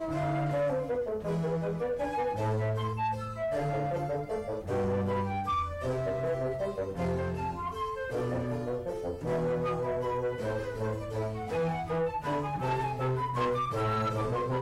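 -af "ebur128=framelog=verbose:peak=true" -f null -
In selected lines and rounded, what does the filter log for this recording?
Integrated loudness:
  I:         -31.9 LUFS
  Threshold: -41.9 LUFS
Loudness range:
  LRA:         1.7 LU
  Threshold: -52.2 LUFS
  LRA low:   -32.9 LUFS
  LRA high:  -31.2 LUFS
True peak:
  Peak:      -24.9 dBFS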